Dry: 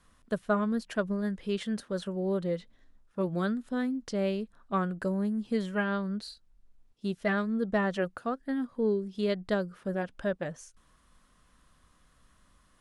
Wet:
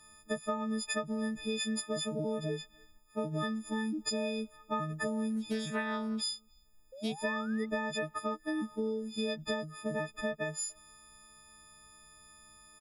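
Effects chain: partials quantised in pitch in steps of 6 st; compression 12:1, threshold -30 dBFS, peak gain reduction 11 dB; speakerphone echo 290 ms, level -28 dB; 6.92–7.66 s: painted sound rise 510–2100 Hz -48 dBFS; 5.36–7.19 s: loudspeaker Doppler distortion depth 0.12 ms

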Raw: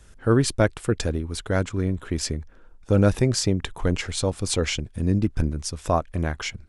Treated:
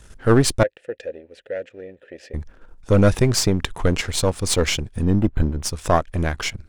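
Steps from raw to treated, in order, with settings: partial rectifier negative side -7 dB; 0.63–2.34 s: vowel filter e; 5.03–5.63 s: decimation joined by straight lines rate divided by 8×; trim +7 dB

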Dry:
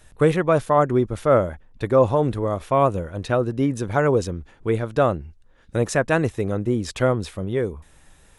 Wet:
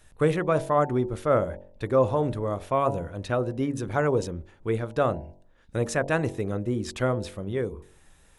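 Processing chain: de-hum 46.33 Hz, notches 21; trim -4.5 dB

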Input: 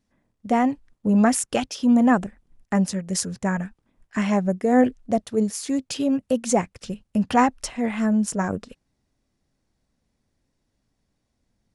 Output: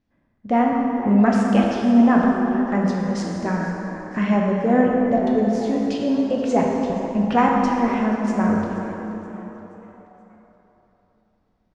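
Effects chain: distance through air 190 m; on a send: frequency-shifting echo 477 ms, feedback 46%, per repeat +130 Hz, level -18.5 dB; on the sum: plate-style reverb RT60 3.4 s, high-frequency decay 0.6×, DRR -2 dB

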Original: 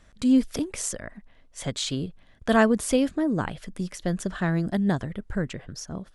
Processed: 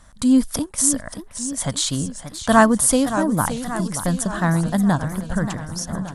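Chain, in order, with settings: 0.66–1.07 s: gate -35 dBFS, range -7 dB; fifteen-band graphic EQ 400 Hz -10 dB, 1 kHz +6 dB, 2.5 kHz -8 dB, 10 kHz +11 dB; modulated delay 576 ms, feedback 60%, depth 185 cents, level -11 dB; trim +6.5 dB

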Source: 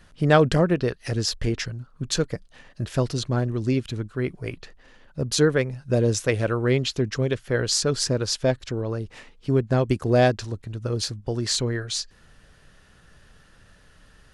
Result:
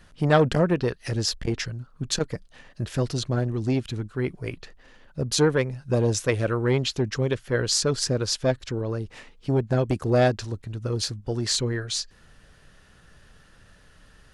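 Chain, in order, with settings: transformer saturation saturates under 470 Hz

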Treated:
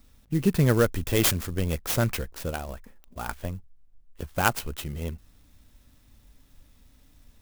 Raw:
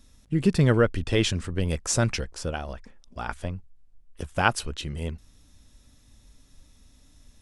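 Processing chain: 0.92–1.78 s: resonant low-pass 7 kHz, resonance Q 8.3; sampling jitter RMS 0.045 ms; trim -1 dB

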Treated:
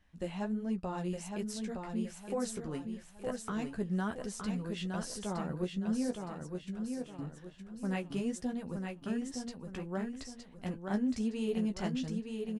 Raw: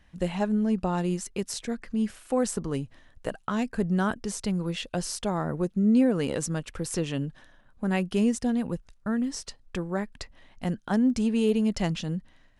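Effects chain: 5.82–7.19 s: level held to a coarse grid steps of 23 dB; flange 1.4 Hz, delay 9.7 ms, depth 7.1 ms, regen -25%; feedback delay 915 ms, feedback 36%, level -5 dB; trim -6 dB

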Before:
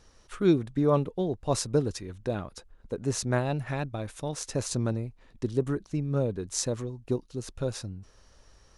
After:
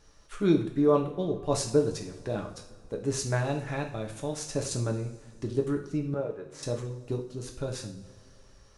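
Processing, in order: 6.14–6.63 s: three-band isolator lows -15 dB, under 390 Hz, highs -19 dB, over 2.5 kHz; two-slope reverb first 0.48 s, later 2.7 s, from -19 dB, DRR 1.5 dB; trim -2.5 dB

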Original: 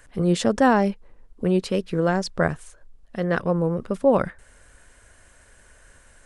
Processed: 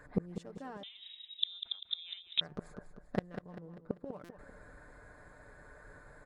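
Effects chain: local Wiener filter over 15 samples; high-pass 70 Hz 6 dB/octave; comb 6.7 ms, depth 49%; inverted gate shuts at -19 dBFS, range -31 dB; feedback delay 196 ms, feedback 46%, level -10 dB; 0.83–2.41 s: frequency inversion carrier 3.8 kHz; buffer glitch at 4.24 s, samples 256, times 8; trim +2 dB

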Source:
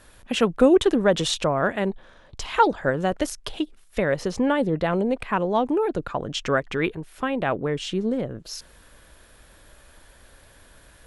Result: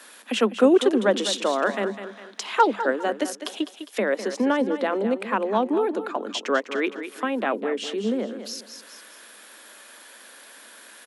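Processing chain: Chebyshev high-pass 200 Hz, order 10; feedback delay 203 ms, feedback 33%, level -11.5 dB; tape noise reduction on one side only encoder only

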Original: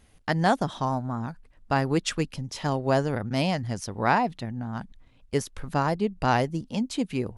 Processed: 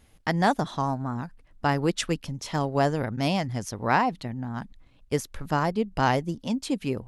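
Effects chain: speed mistake 24 fps film run at 25 fps

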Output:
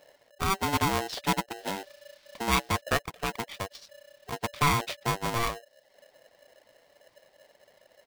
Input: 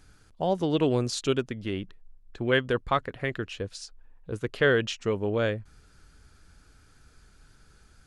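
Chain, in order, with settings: reverb removal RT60 0.64 s; in parallel at -4.5 dB: Schmitt trigger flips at -23 dBFS; 1.56–2.80 s: on the sum: added noise blue -47 dBFS; 3.71–4.34 s: word length cut 10-bit, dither triangular; resampled via 11.025 kHz; polarity switched at an audio rate 580 Hz; trim -2.5 dB

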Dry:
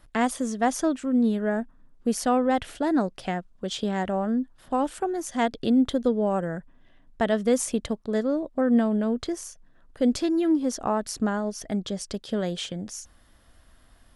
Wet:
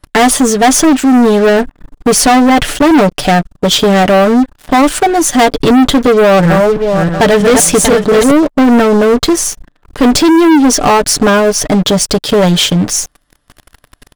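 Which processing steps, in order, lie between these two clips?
6.13–8.31 s: backward echo that repeats 318 ms, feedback 47%, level -6 dB; comb 6.8 ms, depth 61%; waveshaping leveller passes 5; trim +5.5 dB

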